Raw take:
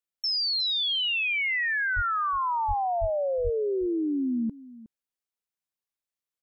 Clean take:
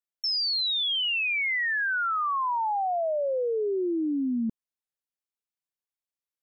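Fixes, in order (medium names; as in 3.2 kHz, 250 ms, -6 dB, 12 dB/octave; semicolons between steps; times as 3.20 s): de-plosive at 1.95/2.67/3.00/3.43 s; inverse comb 364 ms -18.5 dB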